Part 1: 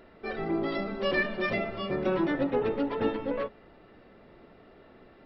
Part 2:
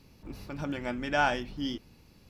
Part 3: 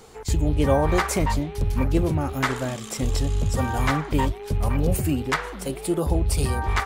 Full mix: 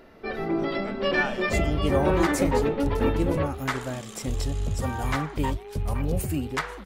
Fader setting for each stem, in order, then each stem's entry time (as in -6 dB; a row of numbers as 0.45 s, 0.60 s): +3.0 dB, -5.5 dB, -4.5 dB; 0.00 s, 0.00 s, 1.25 s